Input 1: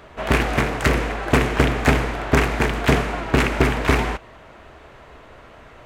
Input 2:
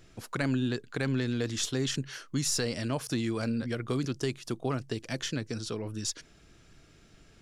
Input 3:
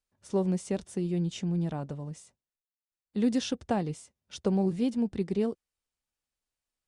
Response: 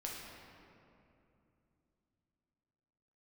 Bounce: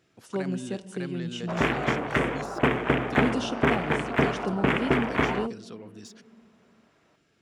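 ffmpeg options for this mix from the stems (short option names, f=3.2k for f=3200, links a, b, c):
-filter_complex "[0:a]afwtdn=0.0501,adelay=1300,volume=-4.5dB[a];[1:a]deesser=0.7,bass=f=250:g=-2,treble=f=4k:g=-5,volume=-6.5dB,asplit=3[b][c][d];[b]atrim=end=2.59,asetpts=PTS-STARTPTS,afade=t=out:st=2.586:d=0.004:c=hsin[e];[c]atrim=start=2.59:end=3.1,asetpts=PTS-STARTPTS,volume=0[f];[d]atrim=start=3.1,asetpts=PTS-STARTPTS,afade=t=in:d=0.004:c=hsin[g];[e][f][g]concat=n=3:v=0:a=1[h];[2:a]equalizer=f=2.9k:w=7:g=11.5,volume=-4dB,asplit=2[i][j];[j]volume=-10.5dB[k];[3:a]atrim=start_sample=2205[l];[k][l]afir=irnorm=-1:irlink=0[m];[a][h][i][m]amix=inputs=4:normalize=0,highpass=130"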